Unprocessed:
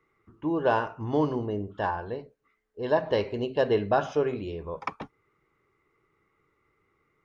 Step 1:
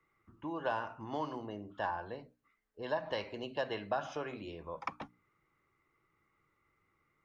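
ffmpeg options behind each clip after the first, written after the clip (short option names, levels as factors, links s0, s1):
-filter_complex "[0:a]equalizer=f=420:t=o:w=0.38:g=-9.5,bandreject=f=60:t=h:w=6,bandreject=f=120:t=h:w=6,bandreject=f=180:t=h:w=6,bandreject=f=240:t=h:w=6,bandreject=f=300:t=h:w=6,acrossover=split=230|620[s0][s1][s2];[s0]acompressor=threshold=0.00316:ratio=4[s3];[s1]acompressor=threshold=0.0126:ratio=4[s4];[s2]acompressor=threshold=0.0355:ratio=4[s5];[s3][s4][s5]amix=inputs=3:normalize=0,volume=0.631"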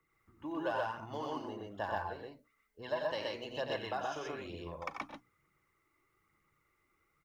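-af "aphaser=in_gain=1:out_gain=1:delay=3.6:decay=0.43:speed=1.1:type=triangular,highshelf=f=4600:g=8.5,aecho=1:1:90.38|125.4:0.447|0.891,volume=0.596"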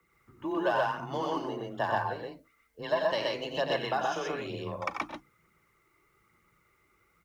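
-af "afreqshift=21,volume=2.37"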